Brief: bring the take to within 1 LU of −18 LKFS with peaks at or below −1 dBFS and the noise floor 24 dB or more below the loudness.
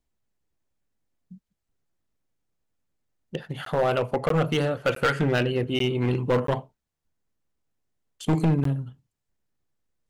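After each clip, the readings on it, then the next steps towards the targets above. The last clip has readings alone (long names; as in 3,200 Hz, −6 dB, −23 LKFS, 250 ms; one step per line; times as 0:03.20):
share of clipped samples 1.3%; peaks flattened at −16.5 dBFS; number of dropouts 6; longest dropout 13 ms; integrated loudness −25.0 LKFS; sample peak −16.5 dBFS; target loudness −18.0 LKFS
→ clipped peaks rebuilt −16.5 dBFS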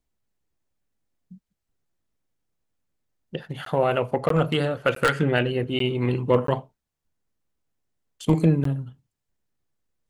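share of clipped samples 0.0%; number of dropouts 6; longest dropout 13 ms
→ repair the gap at 0:03.65/0:04.29/0:04.95/0:05.79/0:06.47/0:08.64, 13 ms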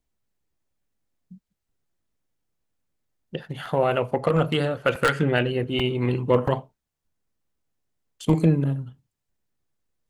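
number of dropouts 0; integrated loudness −23.5 LKFS; sample peak −7.5 dBFS; target loudness −18.0 LKFS
→ level +5.5 dB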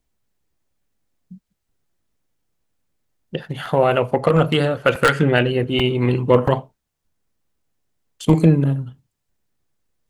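integrated loudness −18.0 LKFS; sample peak −2.0 dBFS; background noise floor −77 dBFS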